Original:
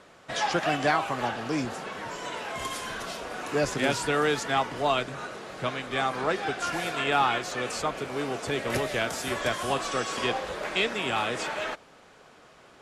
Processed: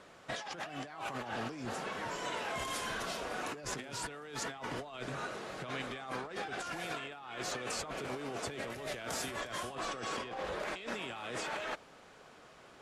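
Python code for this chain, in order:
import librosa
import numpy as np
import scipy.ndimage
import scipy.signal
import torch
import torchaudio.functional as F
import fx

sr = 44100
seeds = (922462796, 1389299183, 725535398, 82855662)

y = fx.high_shelf(x, sr, hz=4200.0, db=-7.5, at=(9.75, 10.6))
y = fx.over_compress(y, sr, threshold_db=-34.0, ratio=-1.0)
y = F.gain(torch.from_numpy(y), -7.0).numpy()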